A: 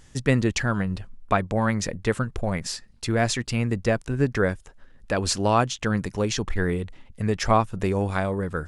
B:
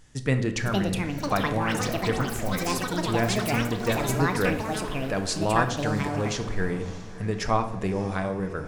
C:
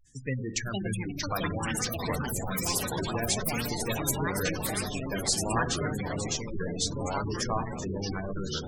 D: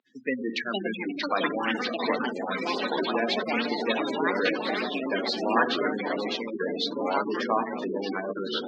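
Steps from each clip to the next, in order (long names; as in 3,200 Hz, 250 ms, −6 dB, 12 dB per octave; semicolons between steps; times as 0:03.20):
delay with pitch and tempo change per echo 555 ms, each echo +7 semitones, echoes 3; feedback delay with all-pass diffusion 629 ms, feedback 41%, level −15 dB; rectangular room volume 300 cubic metres, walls mixed, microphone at 0.48 metres; level −4.5 dB
delay with pitch and tempo change per echo 523 ms, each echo −3 semitones, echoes 3; first-order pre-emphasis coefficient 0.8; gate on every frequency bin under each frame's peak −15 dB strong; level +5.5 dB
Chebyshev band-pass filter 230–4,100 Hz, order 4; level +6.5 dB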